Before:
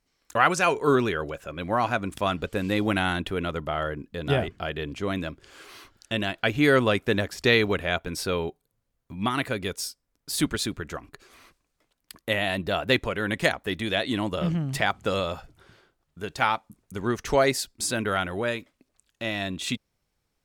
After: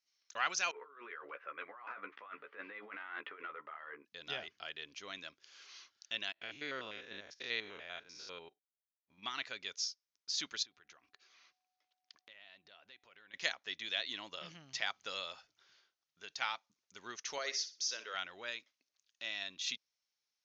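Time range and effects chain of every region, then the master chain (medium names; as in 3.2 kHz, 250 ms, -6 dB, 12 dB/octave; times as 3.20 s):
0.71–4.05 s: cabinet simulation 350–2000 Hz, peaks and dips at 460 Hz +6 dB, 680 Hz -4 dB, 1.2 kHz +8 dB, 2 kHz +5 dB + compressor with a negative ratio -32 dBFS + doubling 14 ms -5 dB
6.32–9.23 s: spectrogram pixelated in time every 100 ms + treble shelf 2 kHz -8.5 dB + gate -43 dBFS, range -16 dB
10.62–13.33 s: compression 10:1, threshold -40 dBFS + whistle 740 Hz -67 dBFS + distance through air 100 m
17.38–18.14 s: cabinet simulation 430–6000 Hz, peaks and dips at 470 Hz +8 dB, 760 Hz -9 dB, 1.5 kHz -3 dB, 2.4 kHz -4 dB, 4 kHz -6 dB, 5.9 kHz +5 dB + flutter echo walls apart 10.5 m, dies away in 0.31 s
whole clip: steep low-pass 6.5 kHz 96 dB/octave; differentiator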